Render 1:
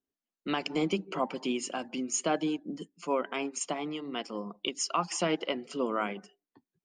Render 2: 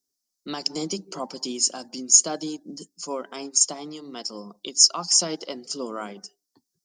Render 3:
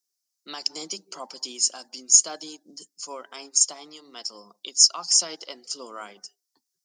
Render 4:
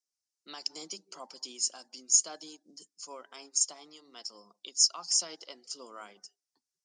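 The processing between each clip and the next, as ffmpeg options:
-af "highshelf=f=3.7k:t=q:w=3:g=13,volume=-1dB"
-af "highpass=f=1.2k:p=1"
-af "aresample=22050,aresample=44100,volume=-8dB"

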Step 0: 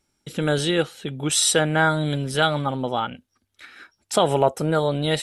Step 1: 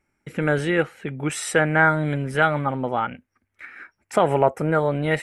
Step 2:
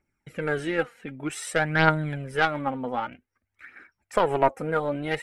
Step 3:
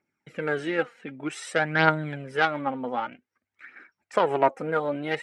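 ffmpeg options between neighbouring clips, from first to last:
-af "highshelf=f=2.8k:t=q:w=3:g=-9"
-af "aeval=exprs='0.668*(cos(1*acos(clip(val(0)/0.668,-1,1)))-cos(1*PI/2))+0.119*(cos(3*acos(clip(val(0)/0.668,-1,1)))-cos(3*PI/2))':c=same,aphaser=in_gain=1:out_gain=1:delay=4.4:decay=0.51:speed=0.53:type=triangular,volume=-1dB"
-af "highpass=170,lowpass=6.6k"

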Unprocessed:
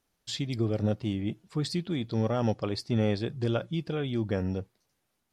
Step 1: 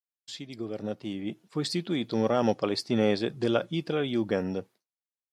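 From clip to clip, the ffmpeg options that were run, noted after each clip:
-af "agate=range=-33dB:threshold=-47dB:ratio=3:detection=peak,highpass=220,dynaudnorm=f=520:g=5:m=11dB,volume=-6dB"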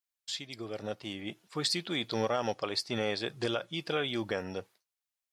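-af "equalizer=f=220:w=0.5:g=-13,alimiter=limit=-23dB:level=0:latency=1:release=336,volume=4.5dB"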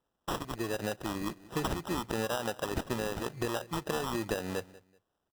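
-filter_complex "[0:a]acompressor=threshold=-37dB:ratio=6,asplit=2[a][b];[b]adelay=190,lowpass=f=1.2k:p=1,volume=-19.5dB,asplit=2[c][d];[d]adelay=190,lowpass=f=1.2k:p=1,volume=0.27[e];[a][c][e]amix=inputs=3:normalize=0,acrusher=samples=20:mix=1:aa=0.000001,volume=7.5dB"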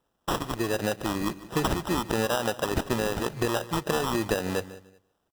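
-af "aecho=1:1:148|296:0.126|0.0315,volume=6.5dB"

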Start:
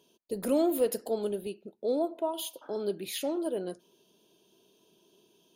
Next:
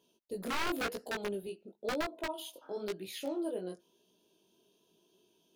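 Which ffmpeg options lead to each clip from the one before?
-filter_complex "[0:a]aeval=exprs='(mod(12.6*val(0)+1,2)-1)/12.6':c=same,acrossover=split=5100[a][b];[b]acompressor=threshold=-40dB:ratio=4:attack=1:release=60[c];[a][c]amix=inputs=2:normalize=0,flanger=delay=16:depth=6.3:speed=0.97,volume=-2.5dB"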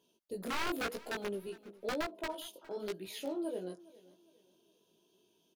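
-af "aecho=1:1:410|820|1230:0.0891|0.0312|0.0109,volume=-1.5dB"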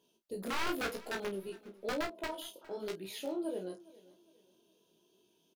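-filter_complex "[0:a]asplit=2[a][b];[b]adelay=31,volume=-9dB[c];[a][c]amix=inputs=2:normalize=0"

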